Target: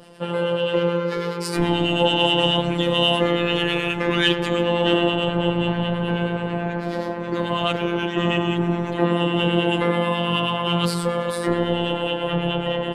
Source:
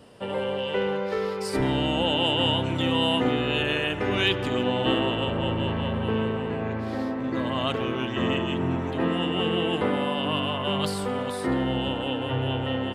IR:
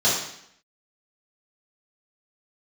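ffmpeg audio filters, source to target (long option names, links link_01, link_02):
-filter_complex "[0:a]acontrast=89,acrossover=split=1100[link_01][link_02];[link_01]aeval=exprs='val(0)*(1-0.5/2+0.5/2*cos(2*PI*9.3*n/s))':channel_layout=same[link_03];[link_02]aeval=exprs='val(0)*(1-0.5/2-0.5/2*cos(2*PI*9.3*n/s))':channel_layout=same[link_04];[link_03][link_04]amix=inputs=2:normalize=0,afftfilt=real='hypot(re,im)*cos(PI*b)':imag='0':win_size=1024:overlap=0.75,volume=3.5dB"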